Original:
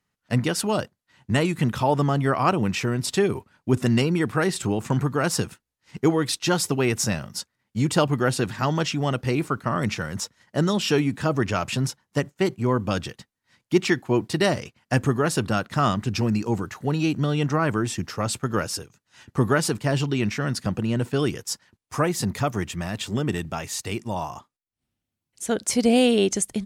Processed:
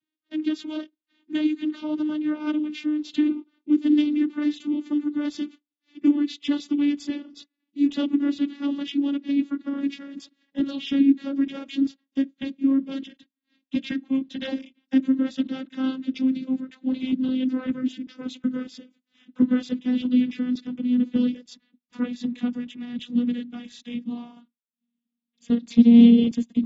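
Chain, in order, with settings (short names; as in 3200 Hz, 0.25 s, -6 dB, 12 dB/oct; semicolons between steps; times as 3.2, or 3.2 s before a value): vocoder on a gliding note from D#4, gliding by -5 st; EQ curve 150 Hz 0 dB, 280 Hz -5 dB, 490 Hz -16 dB, 820 Hz -22 dB, 1300 Hz -18 dB, 3500 Hz 0 dB, 5700 Hz -13 dB; gain +6 dB; AAC 24 kbps 44100 Hz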